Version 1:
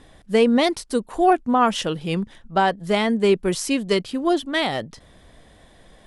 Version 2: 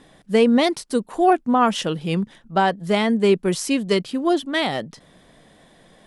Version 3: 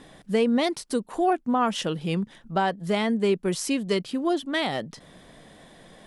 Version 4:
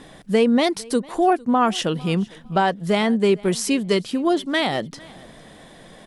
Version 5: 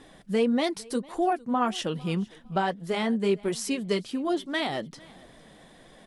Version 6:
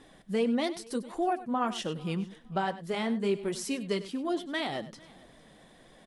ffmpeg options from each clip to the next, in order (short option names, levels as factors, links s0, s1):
-af "lowshelf=f=110:t=q:w=1.5:g=-9.5"
-af "acompressor=threshold=0.0158:ratio=1.5,volume=1.26"
-af "aecho=1:1:453|906:0.0668|0.0127,volume=1.78"
-af "flanger=delay=2.3:depth=3.9:regen=-51:speed=1.7:shape=triangular,volume=0.668"
-af "aecho=1:1:98:0.178,volume=0.631"